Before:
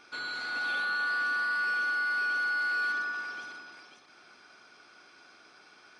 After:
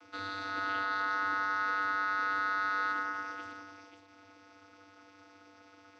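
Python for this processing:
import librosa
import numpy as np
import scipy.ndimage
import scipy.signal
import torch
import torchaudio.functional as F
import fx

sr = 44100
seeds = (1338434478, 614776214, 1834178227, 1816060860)

y = fx.notch(x, sr, hz=1500.0, q=26.0)
y = fx.vocoder(y, sr, bands=16, carrier='square', carrier_hz=97.7)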